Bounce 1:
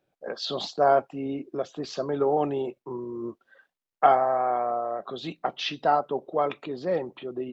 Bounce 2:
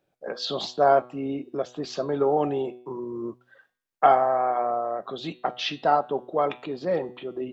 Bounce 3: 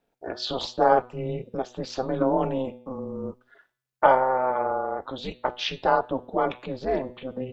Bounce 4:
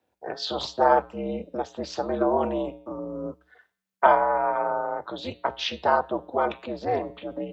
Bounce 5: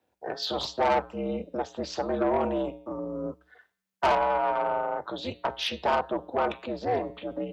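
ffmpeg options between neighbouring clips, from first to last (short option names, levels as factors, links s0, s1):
-af "bandreject=f=123.5:t=h:w=4,bandreject=f=247:t=h:w=4,bandreject=f=370.5:t=h:w=4,bandreject=f=494:t=h:w=4,bandreject=f=617.5:t=h:w=4,bandreject=f=741:t=h:w=4,bandreject=f=864.5:t=h:w=4,bandreject=f=988:t=h:w=4,bandreject=f=1111.5:t=h:w=4,bandreject=f=1235:t=h:w=4,bandreject=f=1358.5:t=h:w=4,bandreject=f=1482:t=h:w=4,bandreject=f=1605.5:t=h:w=4,bandreject=f=1729:t=h:w=4,bandreject=f=1852.5:t=h:w=4,bandreject=f=1976:t=h:w=4,bandreject=f=2099.5:t=h:w=4,bandreject=f=2223:t=h:w=4,bandreject=f=2346.5:t=h:w=4,bandreject=f=2470:t=h:w=4,bandreject=f=2593.5:t=h:w=4,bandreject=f=2717:t=h:w=4,bandreject=f=2840.5:t=h:w=4,bandreject=f=2964:t=h:w=4,bandreject=f=3087.5:t=h:w=4,bandreject=f=3211:t=h:w=4,bandreject=f=3334.5:t=h:w=4,bandreject=f=3458:t=h:w=4,bandreject=f=3581.5:t=h:w=4,bandreject=f=3705:t=h:w=4,bandreject=f=3828.5:t=h:w=4,bandreject=f=3952:t=h:w=4,bandreject=f=4075.5:t=h:w=4,bandreject=f=4199:t=h:w=4,bandreject=f=4322.5:t=h:w=4,bandreject=f=4446:t=h:w=4,volume=1.19"
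-af "aeval=exprs='val(0)*sin(2*PI*130*n/s)':c=same,volume=1.33"
-af "afreqshift=61"
-af "asoftclip=type=tanh:threshold=0.133"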